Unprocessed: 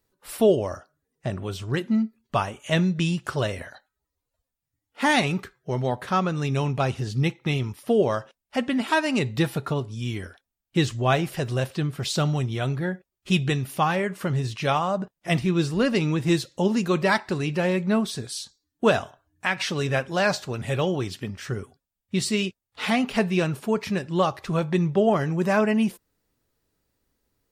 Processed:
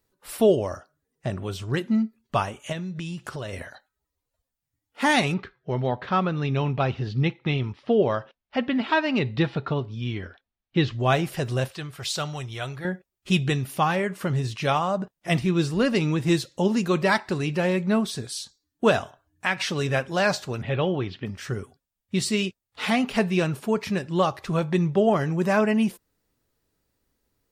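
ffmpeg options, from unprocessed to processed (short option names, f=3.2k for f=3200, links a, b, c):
-filter_complex "[0:a]asplit=3[a][b][c];[a]afade=t=out:st=2.71:d=0.02[d];[b]acompressor=threshold=-30dB:ratio=5:attack=3.2:release=140:knee=1:detection=peak,afade=t=in:st=2.71:d=0.02,afade=t=out:st=3.52:d=0.02[e];[c]afade=t=in:st=3.52:d=0.02[f];[d][e][f]amix=inputs=3:normalize=0,asettb=1/sr,asplit=3[g][h][i];[g]atrim=end=5.344[j];[h]atrim=start=5.34:end=11,asetpts=PTS-STARTPTS,afade=t=in:d=0.004:c=qsin,afade=t=out:st=5.656:d=0.004:c=qsin,lowpass=f=4.3k:w=0.5412,lowpass=f=4.3k:w=1.3066[k];[i]atrim=start=10.996[l];[j][k]acrossfade=d=0.004:c1=hsin:c2=qsin[m];[m][l]acrossfade=d=0.004:c1=qsin:c2=hsin,asettb=1/sr,asplit=3[n][o][p];[n]atrim=end=11.684[q];[o]atrim=start=11.68:end=12.85,asetpts=PTS-STARTPTS,afade=t=in:d=0.004:c=qsin,afade=t=out:st=1.166:d=0.004:c=qsin,equalizer=f=220:t=o:w=2:g=-13.5[r];[p]atrim=start=12.846[s];[q][r]acrossfade=d=0.004:c1=hsin:c2=qsin[t];[t][s]acrossfade=d=0.004:c1=qsin:c2=hsin,asplit=3[u][v][w];[u]afade=t=out:st=20.61:d=0.02[x];[v]lowpass=f=3.7k:w=0.5412,lowpass=f=3.7k:w=1.3066,afade=t=in:st=20.61:d=0.02,afade=t=out:st=21.25:d=0.02[y];[w]afade=t=in:st=21.25:d=0.02[z];[x][y][z]amix=inputs=3:normalize=0"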